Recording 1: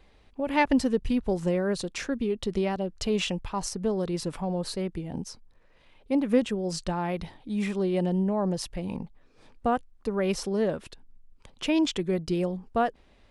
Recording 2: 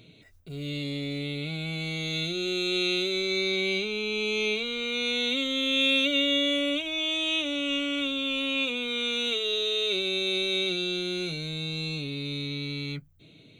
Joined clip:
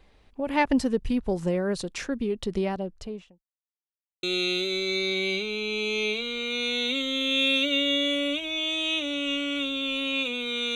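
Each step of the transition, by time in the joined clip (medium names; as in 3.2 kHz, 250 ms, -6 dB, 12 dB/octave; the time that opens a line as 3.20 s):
recording 1
2.62–3.44 s: studio fade out
3.44–4.23 s: mute
4.23 s: go over to recording 2 from 2.65 s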